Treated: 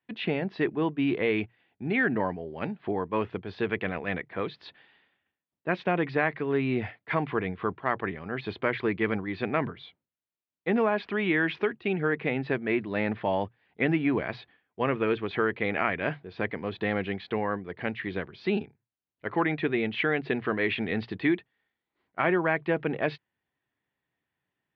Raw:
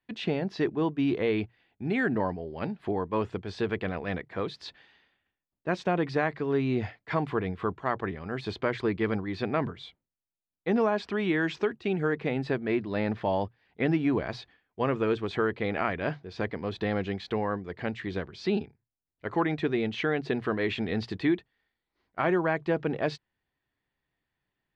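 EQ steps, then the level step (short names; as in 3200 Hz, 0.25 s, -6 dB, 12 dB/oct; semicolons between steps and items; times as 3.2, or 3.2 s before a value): HPF 100 Hz; LPF 3700 Hz 24 dB/oct; dynamic EQ 2200 Hz, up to +6 dB, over -46 dBFS, Q 1.4; 0.0 dB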